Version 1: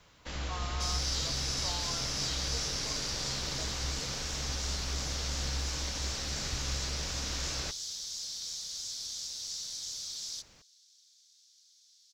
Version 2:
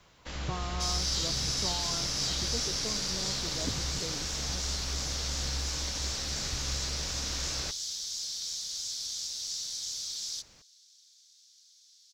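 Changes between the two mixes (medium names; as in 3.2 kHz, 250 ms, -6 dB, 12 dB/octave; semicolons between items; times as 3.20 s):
speech: remove high-pass 850 Hz; second sound +3.0 dB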